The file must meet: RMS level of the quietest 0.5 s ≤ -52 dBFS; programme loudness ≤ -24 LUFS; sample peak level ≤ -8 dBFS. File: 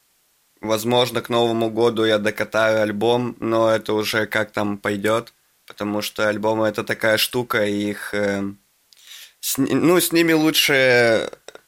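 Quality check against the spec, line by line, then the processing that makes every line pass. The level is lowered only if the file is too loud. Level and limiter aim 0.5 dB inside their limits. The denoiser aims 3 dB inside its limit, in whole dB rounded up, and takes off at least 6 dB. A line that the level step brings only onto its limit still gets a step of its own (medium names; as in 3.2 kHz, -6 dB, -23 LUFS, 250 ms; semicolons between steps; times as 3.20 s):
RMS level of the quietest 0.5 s -63 dBFS: pass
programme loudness -19.5 LUFS: fail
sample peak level -5.5 dBFS: fail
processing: trim -5 dB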